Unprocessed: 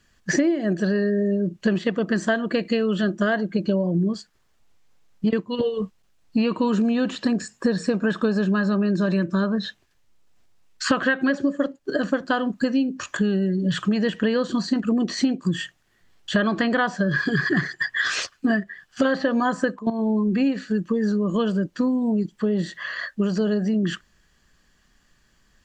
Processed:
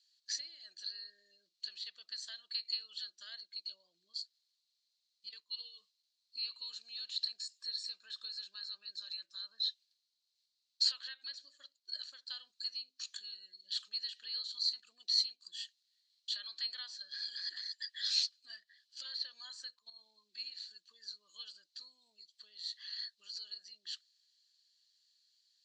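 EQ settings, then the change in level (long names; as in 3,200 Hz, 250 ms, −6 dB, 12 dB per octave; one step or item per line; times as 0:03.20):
resonant band-pass 4,200 Hz, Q 8.8
first difference
+9.0 dB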